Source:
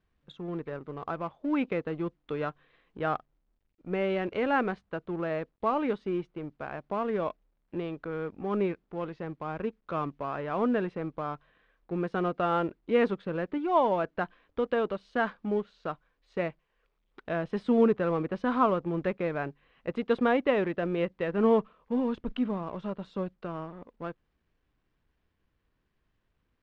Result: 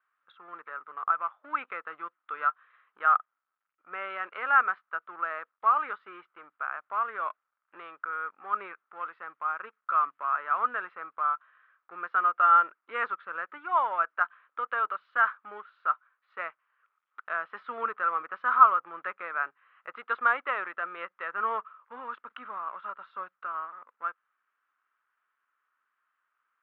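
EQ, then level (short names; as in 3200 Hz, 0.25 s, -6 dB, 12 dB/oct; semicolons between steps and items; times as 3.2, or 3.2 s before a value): resonant high-pass 1300 Hz, resonance Q 6.5; air absorption 490 m; +1.5 dB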